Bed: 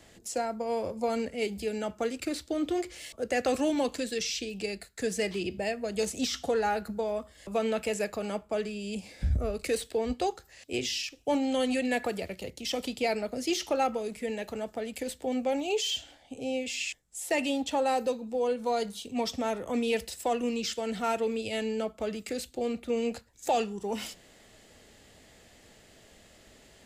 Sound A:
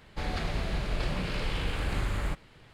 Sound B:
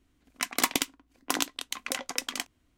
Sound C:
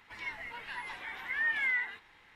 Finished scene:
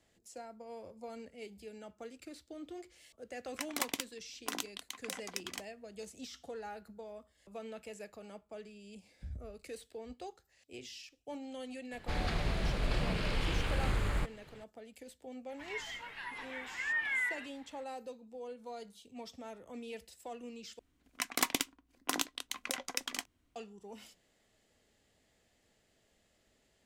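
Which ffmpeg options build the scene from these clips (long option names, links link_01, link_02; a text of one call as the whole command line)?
ffmpeg -i bed.wav -i cue0.wav -i cue1.wav -i cue2.wav -filter_complex "[2:a]asplit=2[link_01][link_02];[0:a]volume=-16.5dB[link_03];[link_01]highpass=96[link_04];[link_03]asplit=2[link_05][link_06];[link_05]atrim=end=20.794[link_07];[link_02]atrim=end=2.77,asetpts=PTS-STARTPTS,volume=-5.5dB[link_08];[link_06]atrim=start=23.556[link_09];[link_04]atrim=end=2.77,asetpts=PTS-STARTPTS,volume=-10dB,afade=type=in:duration=0.004:curve=hsin,afade=type=out:start_time=2.766:duration=0.004:curve=hsin,adelay=3180[link_10];[1:a]atrim=end=2.73,asetpts=PTS-STARTPTS,volume=-2dB,afade=type=in:duration=0.004:curve=hsin,afade=type=out:start_time=2.726:duration=0.004:curve=hsin,adelay=11910[link_11];[3:a]atrim=end=2.35,asetpts=PTS-STARTPTS,volume=-3dB,afade=type=in:duration=0.004:curve=hsin,afade=type=out:start_time=2.346:duration=0.004:curve=hsin,adelay=15490[link_12];[link_07][link_08]acrossfade=duration=0.004:curve1=hsin:curve2=hsin[link_13];[link_13][link_09]acrossfade=duration=0.004:curve1=hsin:curve2=hsin[link_14];[link_14][link_10][link_11][link_12]amix=inputs=4:normalize=0" out.wav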